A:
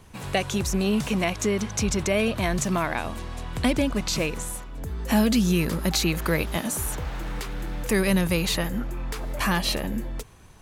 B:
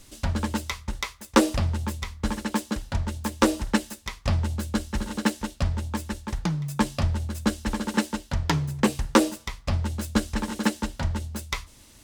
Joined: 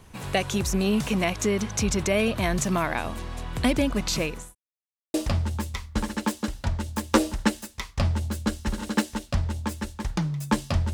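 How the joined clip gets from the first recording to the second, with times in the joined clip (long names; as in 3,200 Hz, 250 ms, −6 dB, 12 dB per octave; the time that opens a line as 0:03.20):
A
0:04.06–0:04.55: fade out equal-power
0:04.55–0:05.14: silence
0:05.14: continue with B from 0:01.42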